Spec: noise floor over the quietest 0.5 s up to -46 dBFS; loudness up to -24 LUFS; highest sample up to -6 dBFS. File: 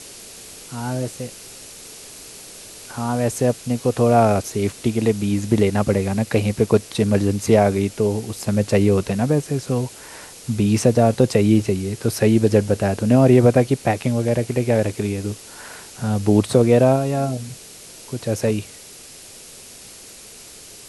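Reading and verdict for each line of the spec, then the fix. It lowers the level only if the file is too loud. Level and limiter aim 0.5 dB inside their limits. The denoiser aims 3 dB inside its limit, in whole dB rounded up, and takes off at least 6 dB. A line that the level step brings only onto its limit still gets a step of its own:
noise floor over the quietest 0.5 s -41 dBFS: fail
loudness -19.5 LUFS: fail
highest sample -2.0 dBFS: fail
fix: noise reduction 6 dB, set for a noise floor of -41 dBFS; trim -5 dB

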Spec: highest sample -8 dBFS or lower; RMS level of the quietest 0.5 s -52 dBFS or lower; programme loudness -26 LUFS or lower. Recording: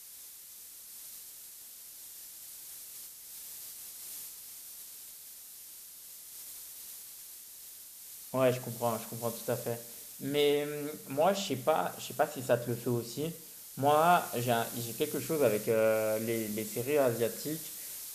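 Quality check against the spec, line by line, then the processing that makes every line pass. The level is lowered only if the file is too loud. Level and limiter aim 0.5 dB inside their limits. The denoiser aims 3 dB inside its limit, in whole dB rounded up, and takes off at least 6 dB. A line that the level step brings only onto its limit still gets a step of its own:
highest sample -13.5 dBFS: pass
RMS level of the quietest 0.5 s -50 dBFS: fail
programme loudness -32.5 LUFS: pass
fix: noise reduction 6 dB, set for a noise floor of -50 dBFS

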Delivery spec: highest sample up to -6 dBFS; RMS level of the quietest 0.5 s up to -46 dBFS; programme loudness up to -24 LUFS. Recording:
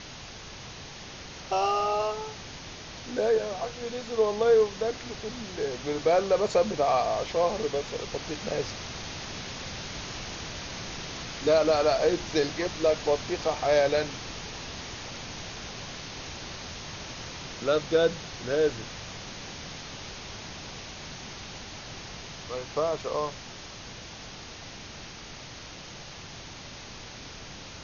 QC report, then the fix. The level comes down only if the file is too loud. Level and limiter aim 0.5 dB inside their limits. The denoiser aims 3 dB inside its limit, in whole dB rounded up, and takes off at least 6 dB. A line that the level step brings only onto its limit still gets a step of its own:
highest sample -12.0 dBFS: pass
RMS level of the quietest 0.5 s -43 dBFS: fail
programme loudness -29.5 LUFS: pass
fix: noise reduction 6 dB, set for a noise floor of -43 dBFS

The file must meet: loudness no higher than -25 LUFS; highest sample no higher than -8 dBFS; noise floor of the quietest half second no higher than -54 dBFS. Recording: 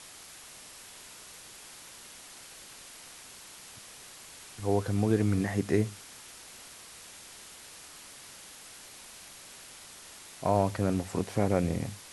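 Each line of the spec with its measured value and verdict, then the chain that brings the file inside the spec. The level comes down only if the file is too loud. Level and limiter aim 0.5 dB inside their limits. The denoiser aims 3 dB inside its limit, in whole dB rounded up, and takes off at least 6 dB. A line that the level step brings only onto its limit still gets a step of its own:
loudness -29.5 LUFS: pass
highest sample -12.0 dBFS: pass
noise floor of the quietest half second -49 dBFS: fail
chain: noise reduction 8 dB, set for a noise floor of -49 dBFS

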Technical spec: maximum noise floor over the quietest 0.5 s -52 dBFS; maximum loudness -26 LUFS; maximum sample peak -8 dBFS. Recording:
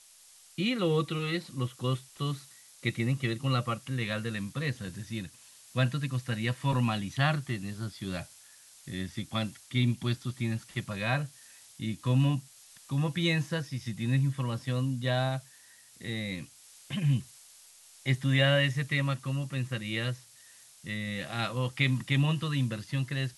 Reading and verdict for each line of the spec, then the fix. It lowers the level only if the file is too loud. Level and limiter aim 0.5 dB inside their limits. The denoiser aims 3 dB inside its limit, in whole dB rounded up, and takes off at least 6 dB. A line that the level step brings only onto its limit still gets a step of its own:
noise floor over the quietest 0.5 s -57 dBFS: pass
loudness -31.0 LUFS: pass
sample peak -11.0 dBFS: pass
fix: none needed

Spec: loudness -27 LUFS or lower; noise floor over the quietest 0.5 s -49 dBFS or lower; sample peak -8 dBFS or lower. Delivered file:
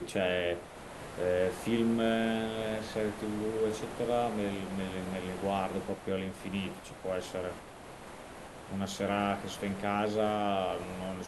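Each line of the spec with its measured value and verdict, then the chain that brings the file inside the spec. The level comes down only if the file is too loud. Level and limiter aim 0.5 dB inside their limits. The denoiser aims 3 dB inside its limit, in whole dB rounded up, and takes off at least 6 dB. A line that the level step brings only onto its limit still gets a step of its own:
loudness -33.5 LUFS: pass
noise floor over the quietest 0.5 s -48 dBFS: fail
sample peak -16.5 dBFS: pass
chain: noise reduction 6 dB, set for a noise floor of -48 dBFS

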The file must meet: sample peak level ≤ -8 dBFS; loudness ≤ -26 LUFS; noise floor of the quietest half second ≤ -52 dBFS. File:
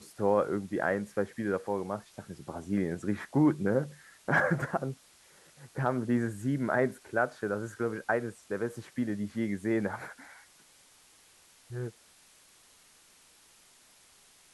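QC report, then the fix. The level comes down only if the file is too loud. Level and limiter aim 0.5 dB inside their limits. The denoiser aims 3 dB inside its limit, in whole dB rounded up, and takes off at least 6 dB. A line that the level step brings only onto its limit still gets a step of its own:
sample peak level -13.5 dBFS: pass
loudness -31.5 LUFS: pass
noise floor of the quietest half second -61 dBFS: pass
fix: none needed

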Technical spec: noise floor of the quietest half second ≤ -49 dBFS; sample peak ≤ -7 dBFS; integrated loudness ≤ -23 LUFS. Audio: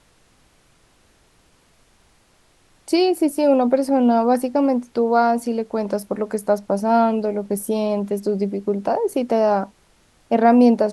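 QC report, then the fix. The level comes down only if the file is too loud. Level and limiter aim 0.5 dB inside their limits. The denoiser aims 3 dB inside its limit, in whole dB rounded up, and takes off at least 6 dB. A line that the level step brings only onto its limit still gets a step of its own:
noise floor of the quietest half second -58 dBFS: pass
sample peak -3.0 dBFS: fail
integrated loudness -19.5 LUFS: fail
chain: trim -4 dB; peak limiter -7.5 dBFS

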